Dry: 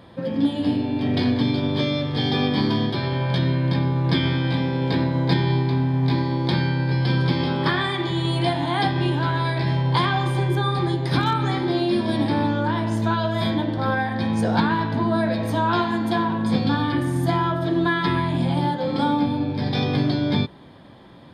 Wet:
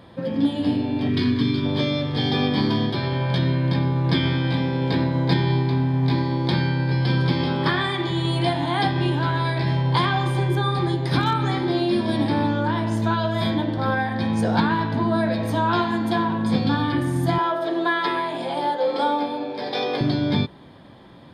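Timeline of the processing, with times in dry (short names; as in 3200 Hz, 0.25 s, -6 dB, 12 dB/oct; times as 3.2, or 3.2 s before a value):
1.09–1.66 spectral gain 470–940 Hz -14 dB
17.38–20.01 resonant high-pass 490 Hz, resonance Q 1.7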